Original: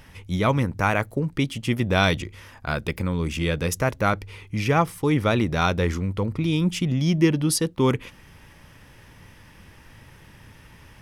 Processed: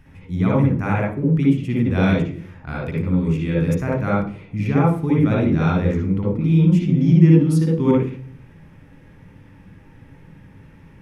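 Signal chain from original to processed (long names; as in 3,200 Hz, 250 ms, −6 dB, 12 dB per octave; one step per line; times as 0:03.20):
tilt shelving filter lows +8 dB
convolution reverb RT60 0.50 s, pre-delay 56 ms, DRR −2.5 dB
level −7 dB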